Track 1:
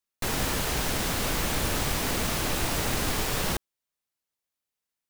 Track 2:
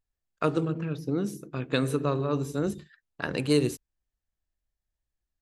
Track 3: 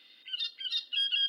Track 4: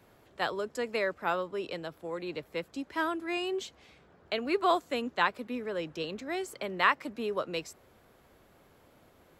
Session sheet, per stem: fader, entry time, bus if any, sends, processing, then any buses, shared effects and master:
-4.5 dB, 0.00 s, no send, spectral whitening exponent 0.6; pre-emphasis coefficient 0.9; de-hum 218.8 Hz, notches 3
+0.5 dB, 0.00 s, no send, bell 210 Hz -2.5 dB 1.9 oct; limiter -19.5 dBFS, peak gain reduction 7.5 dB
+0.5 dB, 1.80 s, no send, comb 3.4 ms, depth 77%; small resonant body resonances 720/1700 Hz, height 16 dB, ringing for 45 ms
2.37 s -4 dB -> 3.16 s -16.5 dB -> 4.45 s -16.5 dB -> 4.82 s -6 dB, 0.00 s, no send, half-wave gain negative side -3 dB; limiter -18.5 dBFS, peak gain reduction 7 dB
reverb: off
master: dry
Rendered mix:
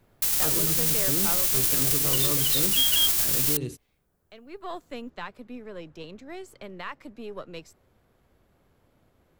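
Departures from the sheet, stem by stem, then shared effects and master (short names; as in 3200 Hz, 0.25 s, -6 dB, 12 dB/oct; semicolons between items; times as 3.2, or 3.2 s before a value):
stem 1 -4.5 dB -> +3.5 dB; stem 2 +0.5 dB -> -6.0 dB; master: extra low shelf 190 Hz +10 dB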